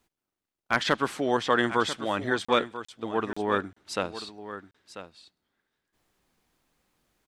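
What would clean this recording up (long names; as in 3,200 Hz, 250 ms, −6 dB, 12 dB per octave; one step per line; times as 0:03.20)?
clipped peaks rebuilt −9 dBFS
repair the gap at 0:02.45/0:02.85/0:03.33/0:03.73/0:04.71, 35 ms
echo removal 991 ms −12.5 dB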